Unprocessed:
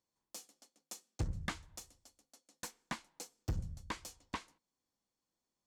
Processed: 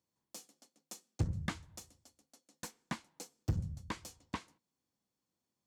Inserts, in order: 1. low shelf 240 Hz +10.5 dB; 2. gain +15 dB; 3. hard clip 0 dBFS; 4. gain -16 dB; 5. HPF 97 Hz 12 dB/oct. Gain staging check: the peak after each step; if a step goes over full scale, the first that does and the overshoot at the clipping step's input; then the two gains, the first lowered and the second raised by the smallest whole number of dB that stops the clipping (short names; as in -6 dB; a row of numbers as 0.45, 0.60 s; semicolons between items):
-19.0, -4.0, -4.0, -20.0, -20.0 dBFS; no overload